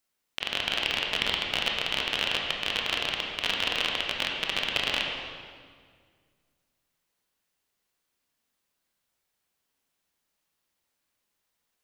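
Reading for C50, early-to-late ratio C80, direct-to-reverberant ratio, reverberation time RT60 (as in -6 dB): 1.5 dB, 3.0 dB, -0.5 dB, 1.9 s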